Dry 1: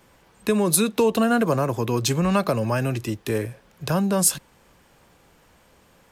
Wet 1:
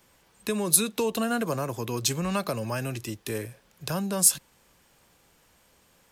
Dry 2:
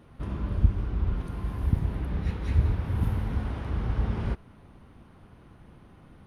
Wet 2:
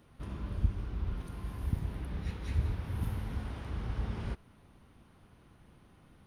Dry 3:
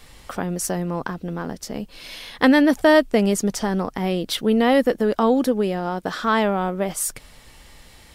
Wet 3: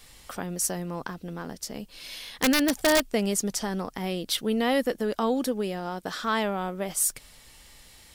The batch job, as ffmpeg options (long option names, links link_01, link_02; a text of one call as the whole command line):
ffmpeg -i in.wav -filter_complex "[0:a]highshelf=frequency=2900:gain=9,acrossover=split=5900[link_01][link_02];[link_01]aeval=exprs='(mod(1.88*val(0)+1,2)-1)/1.88':channel_layout=same[link_03];[link_03][link_02]amix=inputs=2:normalize=0,volume=-8dB" out.wav